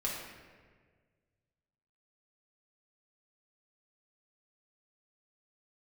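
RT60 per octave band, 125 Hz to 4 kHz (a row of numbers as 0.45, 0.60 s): 2.4, 1.8, 1.8, 1.4, 1.5, 1.0 s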